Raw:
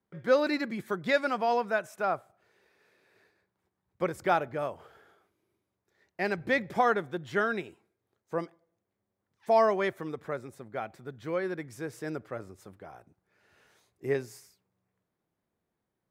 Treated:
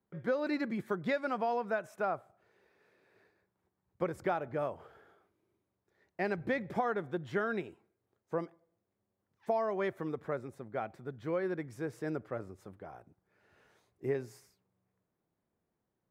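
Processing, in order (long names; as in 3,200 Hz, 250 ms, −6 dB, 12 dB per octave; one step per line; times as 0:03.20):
high-shelf EQ 2,200 Hz −9 dB
downward compressor 10 to 1, threshold −28 dBFS, peak gain reduction 10 dB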